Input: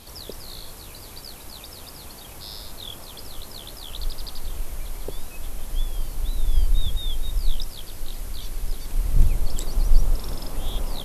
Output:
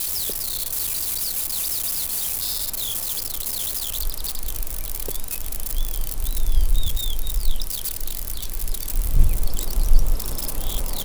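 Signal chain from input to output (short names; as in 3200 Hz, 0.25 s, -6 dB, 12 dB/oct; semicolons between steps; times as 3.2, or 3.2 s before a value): switching spikes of -20 dBFS; gain +1 dB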